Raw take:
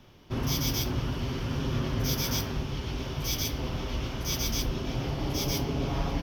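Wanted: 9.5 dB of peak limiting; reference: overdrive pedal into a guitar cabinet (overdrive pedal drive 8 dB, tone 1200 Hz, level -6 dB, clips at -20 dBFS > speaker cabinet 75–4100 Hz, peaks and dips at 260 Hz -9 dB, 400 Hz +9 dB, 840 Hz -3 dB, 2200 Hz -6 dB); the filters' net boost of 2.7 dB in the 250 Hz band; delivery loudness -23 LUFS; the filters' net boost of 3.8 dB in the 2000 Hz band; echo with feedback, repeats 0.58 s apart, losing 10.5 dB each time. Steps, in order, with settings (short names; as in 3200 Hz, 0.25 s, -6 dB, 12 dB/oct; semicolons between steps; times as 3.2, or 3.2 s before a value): bell 250 Hz +7.5 dB; bell 2000 Hz +8.5 dB; limiter -22.5 dBFS; feedback echo 0.58 s, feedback 30%, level -10.5 dB; overdrive pedal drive 8 dB, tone 1200 Hz, level -6 dB, clips at -20 dBFS; speaker cabinet 75–4100 Hz, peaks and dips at 260 Hz -9 dB, 400 Hz +9 dB, 840 Hz -3 dB, 2200 Hz -6 dB; gain +12.5 dB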